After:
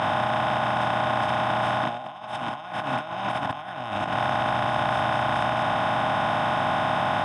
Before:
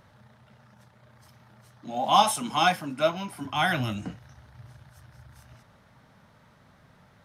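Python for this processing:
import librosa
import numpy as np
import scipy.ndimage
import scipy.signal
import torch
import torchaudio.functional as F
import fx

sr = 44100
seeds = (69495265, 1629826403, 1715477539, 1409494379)

y = fx.bin_compress(x, sr, power=0.2)
y = scipy.signal.sosfilt(scipy.signal.butter(2, 3300.0, 'lowpass', fs=sr, output='sos'), y)
y = fx.over_compress(y, sr, threshold_db=-21.0, ratio=-0.5)
y = y * librosa.db_to_amplitude(-4.5)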